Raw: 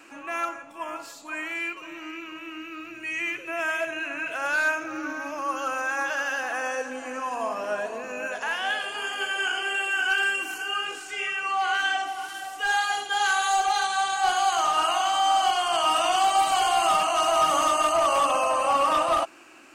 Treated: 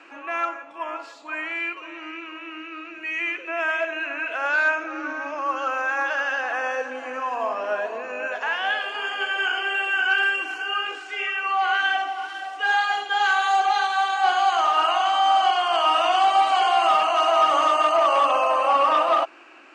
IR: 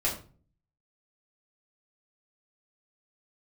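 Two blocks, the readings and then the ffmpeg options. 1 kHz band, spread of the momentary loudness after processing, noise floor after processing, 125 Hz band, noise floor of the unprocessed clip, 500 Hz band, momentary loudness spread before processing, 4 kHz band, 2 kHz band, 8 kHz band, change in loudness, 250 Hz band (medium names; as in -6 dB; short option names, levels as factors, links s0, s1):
+3.5 dB, 13 LU, -41 dBFS, no reading, -43 dBFS, +3.0 dB, 12 LU, +1.0 dB, +3.0 dB, -10.0 dB, +3.0 dB, -1.0 dB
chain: -af "highpass=350,lowpass=3400,volume=1.5"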